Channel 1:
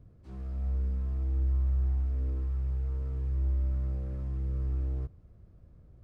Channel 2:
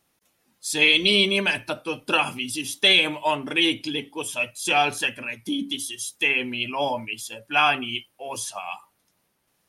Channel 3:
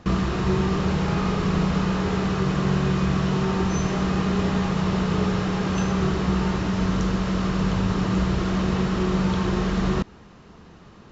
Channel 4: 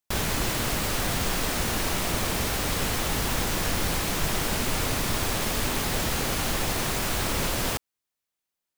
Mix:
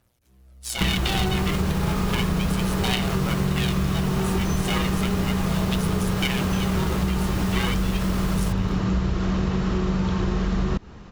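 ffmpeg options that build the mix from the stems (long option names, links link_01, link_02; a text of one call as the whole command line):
ffmpeg -i stem1.wav -i stem2.wav -i stem3.wav -i stem4.wav -filter_complex "[0:a]volume=-15dB[link_01];[1:a]tremolo=f=120:d=0.75,aphaser=in_gain=1:out_gain=1:delay=3:decay=0.64:speed=0.34:type=triangular,aeval=exprs='val(0)*sgn(sin(2*PI*370*n/s))':channel_layout=same,volume=-1.5dB[link_02];[2:a]lowshelf=frequency=91:gain=10,adelay=750,volume=2dB[link_03];[3:a]aecho=1:1:4.9:0.99,adelay=750,volume=-8dB[link_04];[link_01][link_02][link_03][link_04]amix=inputs=4:normalize=0,acompressor=threshold=-20dB:ratio=4" out.wav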